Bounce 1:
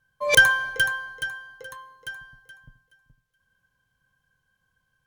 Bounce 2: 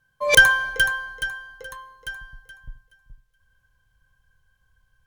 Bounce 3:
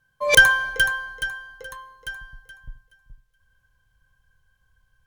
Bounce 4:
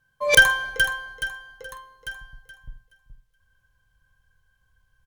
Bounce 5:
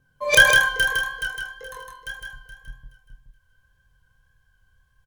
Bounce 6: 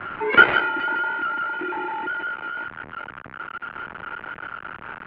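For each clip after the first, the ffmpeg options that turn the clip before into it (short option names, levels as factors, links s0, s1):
-af "asubboost=boost=9.5:cutoff=65,volume=1.33"
-af anull
-filter_complex "[0:a]asplit=2[s0][s1];[s1]adelay=48,volume=0.224[s2];[s0][s2]amix=inputs=2:normalize=0,volume=0.891"
-filter_complex "[0:a]acrossover=split=540|920[s0][s1][s2];[s0]acompressor=mode=upward:threshold=0.00112:ratio=2.5[s3];[s3][s1][s2]amix=inputs=3:normalize=0,flanger=delay=22.5:depth=7.7:speed=1.8,aecho=1:1:159:0.631,volume=1.5"
-af "aeval=exprs='val(0)+0.5*0.0794*sgn(val(0))':c=same,aeval=exprs='0.944*(cos(1*acos(clip(val(0)/0.944,-1,1)))-cos(1*PI/2))+0.299*(cos(4*acos(clip(val(0)/0.944,-1,1)))-cos(4*PI/2))+0.266*(cos(7*acos(clip(val(0)/0.944,-1,1)))-cos(7*PI/2))':c=same,highpass=f=300:t=q:w=0.5412,highpass=f=300:t=q:w=1.307,lowpass=f=2500:t=q:w=0.5176,lowpass=f=2500:t=q:w=0.7071,lowpass=f=2500:t=q:w=1.932,afreqshift=-160"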